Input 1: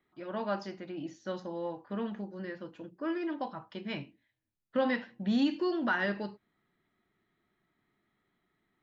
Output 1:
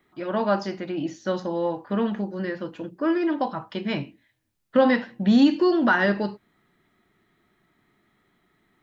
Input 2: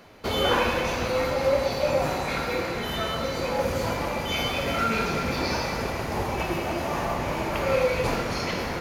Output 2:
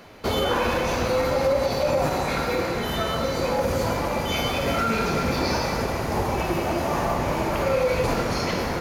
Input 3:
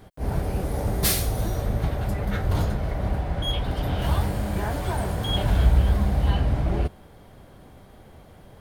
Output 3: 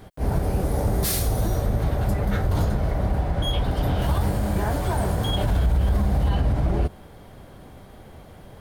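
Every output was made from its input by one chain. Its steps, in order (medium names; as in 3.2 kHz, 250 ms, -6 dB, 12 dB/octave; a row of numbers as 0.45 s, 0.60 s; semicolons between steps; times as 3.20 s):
peak limiter -17 dBFS; dynamic bell 2.6 kHz, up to -4 dB, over -46 dBFS, Q 0.95; normalise loudness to -24 LUFS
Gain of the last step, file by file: +11.0 dB, +4.0 dB, +3.5 dB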